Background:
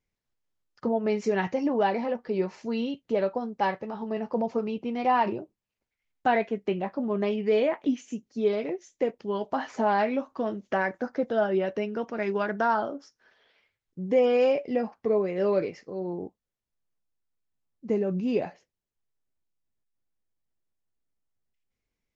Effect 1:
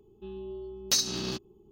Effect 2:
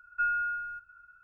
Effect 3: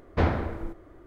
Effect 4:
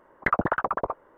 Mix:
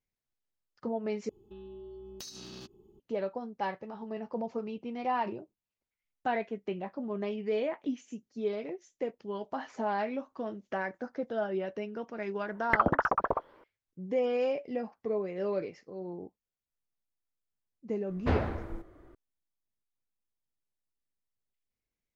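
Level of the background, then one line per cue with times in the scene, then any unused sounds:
background -7.5 dB
1.29 replace with 1 -2 dB + compressor, threshold -41 dBFS
12.47 add 4 -1.5 dB
18.09 add 3 -5 dB
not used: 2

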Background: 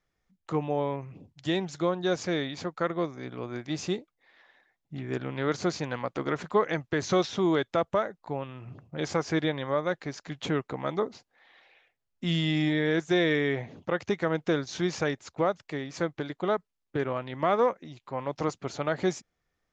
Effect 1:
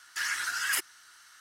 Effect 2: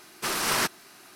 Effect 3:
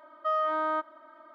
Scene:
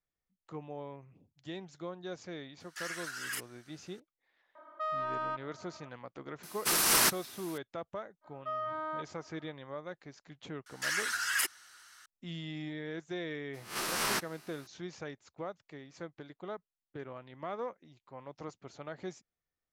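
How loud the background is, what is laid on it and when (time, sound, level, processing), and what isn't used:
background -14.5 dB
2.6 add 1 -9.5 dB
4.55 add 3 -7 dB + overdrive pedal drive 14 dB, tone 1100 Hz, clips at -19.5 dBFS
6.43 add 2 -3.5 dB + high shelf 6400 Hz +11 dB
8.21 add 3 -9 dB, fades 0.05 s
10.66 add 1 -1.5 dB
13.53 add 2 -8 dB, fades 0.02 s + spectral swells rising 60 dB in 0.37 s

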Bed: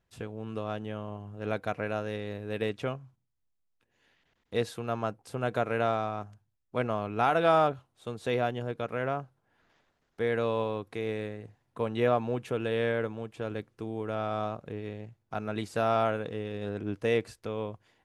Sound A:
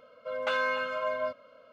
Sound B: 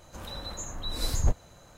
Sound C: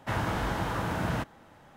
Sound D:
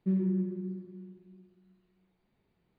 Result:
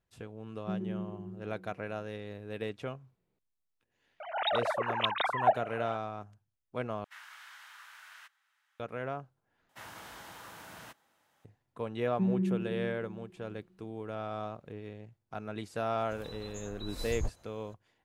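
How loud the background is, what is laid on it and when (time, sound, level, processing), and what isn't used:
bed -6 dB
0.61 add D -8.5 dB + bell 490 Hz +6 dB
4.2 add B -1.5 dB + sine-wave speech
7.04 replace with C -12.5 dB + HPF 1400 Hz 24 dB/oct
9.69 replace with C -16.5 dB + tilt +3.5 dB/oct
12.13 add D -1 dB
15.97 add B -10 dB
not used: A

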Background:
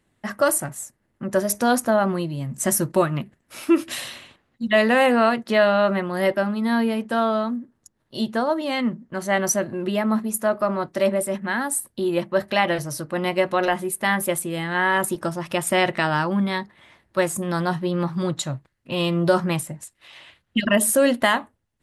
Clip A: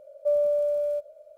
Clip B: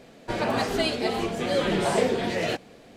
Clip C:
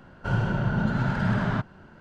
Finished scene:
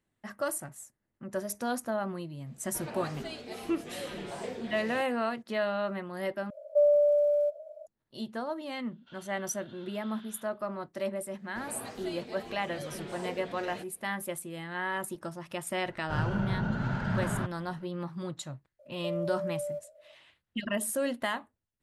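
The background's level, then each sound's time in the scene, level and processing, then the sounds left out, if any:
background -13 dB
2.46 add B -15.5 dB
6.5 replace with A -6.5 dB + bell 640 Hz +12.5 dB 0.31 oct
8.82 add C -2.5 dB + band-pass 3500 Hz, Q 8.5
11.27 add B -17 dB
15.85 add C -6 dB
18.79 add A -7.5 dB + compressor, threshold -25 dBFS

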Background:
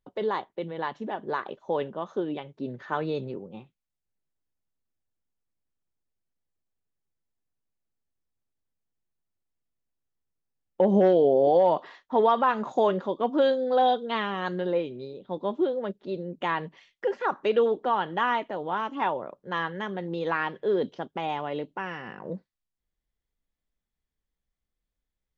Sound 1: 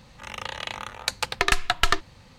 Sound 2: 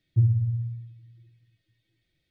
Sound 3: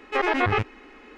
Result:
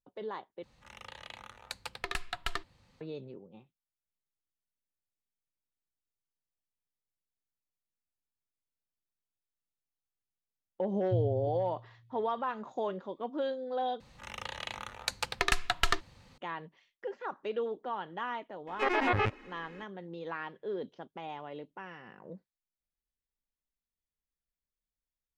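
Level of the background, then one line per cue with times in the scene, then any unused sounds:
background -11.5 dB
0.63 replace with 1 -14.5 dB + dynamic EQ 6200 Hz, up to -5 dB, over -48 dBFS, Q 3.6
10.95 add 2 -11 dB
14 replace with 1 -7 dB
18.67 add 3 -6 dB

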